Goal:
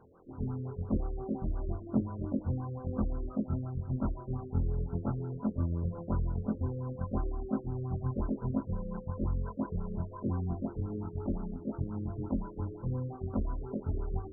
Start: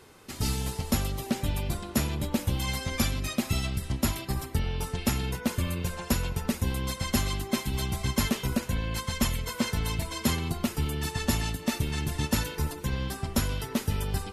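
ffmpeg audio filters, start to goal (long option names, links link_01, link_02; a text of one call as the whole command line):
ffmpeg -i in.wav -filter_complex "[0:a]afftfilt=real='re':imag='-im':win_size=2048:overlap=0.75,acrossover=split=150|420|6700[link_01][link_02][link_03][link_04];[link_01]crystalizer=i=9.5:c=0[link_05];[link_02]aphaser=in_gain=1:out_gain=1:delay=4.8:decay=0.46:speed=1:type=triangular[link_06];[link_05][link_06][link_03][link_04]amix=inputs=4:normalize=0,afftfilt=real='re*lt(b*sr/1024,560*pow(1600/560,0.5+0.5*sin(2*PI*5.7*pts/sr)))':imag='im*lt(b*sr/1024,560*pow(1600/560,0.5+0.5*sin(2*PI*5.7*pts/sr)))':win_size=1024:overlap=0.75" out.wav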